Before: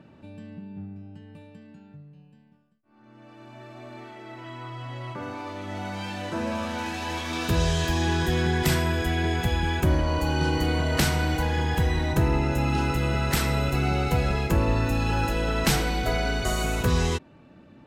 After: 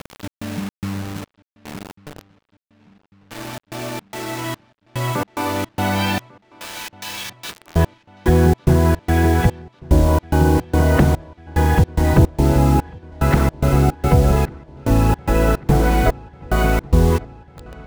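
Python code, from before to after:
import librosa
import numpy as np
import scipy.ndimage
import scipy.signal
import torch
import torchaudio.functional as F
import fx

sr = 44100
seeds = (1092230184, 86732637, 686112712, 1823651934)

p1 = fx.env_lowpass_down(x, sr, base_hz=710.0, full_db=-18.5)
p2 = fx.differentiator(p1, sr, at=(6.18, 7.76))
p3 = fx.rider(p2, sr, range_db=5, speed_s=2.0)
p4 = p2 + (p3 * librosa.db_to_amplitude(0.0))
p5 = fx.step_gate(p4, sr, bpm=109, pattern='xx.xx.xxx...', floor_db=-60.0, edge_ms=4.5)
p6 = fx.quant_dither(p5, sr, seeds[0], bits=6, dither='none')
p7 = p6 + fx.echo_wet_lowpass(p6, sr, ms=1146, feedback_pct=71, hz=4000.0, wet_db=-24, dry=0)
y = p7 * librosa.db_to_amplitude(5.0)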